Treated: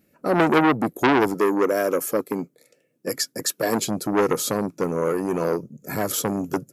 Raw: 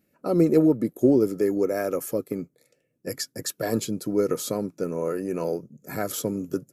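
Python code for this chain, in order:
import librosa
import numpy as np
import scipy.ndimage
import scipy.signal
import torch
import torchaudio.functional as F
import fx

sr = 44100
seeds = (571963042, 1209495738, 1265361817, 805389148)

y = fx.highpass(x, sr, hz=180.0, slope=12, at=(1.34, 3.88))
y = fx.transformer_sat(y, sr, knee_hz=1700.0)
y = F.gain(torch.from_numpy(y), 6.0).numpy()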